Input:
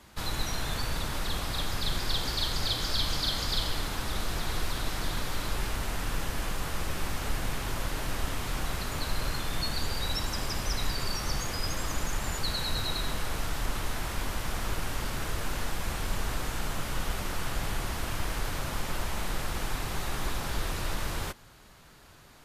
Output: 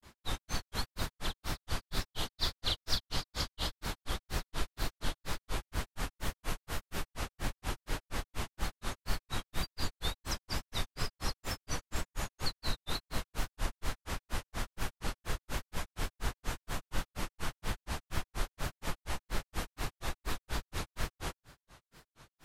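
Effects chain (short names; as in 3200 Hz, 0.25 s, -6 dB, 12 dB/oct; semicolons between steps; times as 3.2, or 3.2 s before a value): wow and flutter 150 cents; grains 0.149 s, grains 4.2/s, spray 23 ms, pitch spread up and down by 0 st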